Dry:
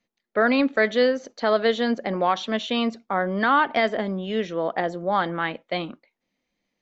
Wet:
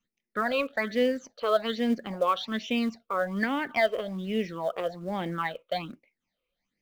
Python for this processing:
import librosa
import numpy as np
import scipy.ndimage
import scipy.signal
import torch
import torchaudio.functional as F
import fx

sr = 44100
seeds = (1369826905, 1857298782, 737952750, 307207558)

p1 = fx.phaser_stages(x, sr, stages=8, low_hz=230.0, high_hz=1300.0, hz=1.2, feedback_pct=45)
p2 = fx.quant_float(p1, sr, bits=2)
p3 = p1 + F.gain(torch.from_numpy(p2), -8.0).numpy()
y = F.gain(torch.from_numpy(p3), -5.0).numpy()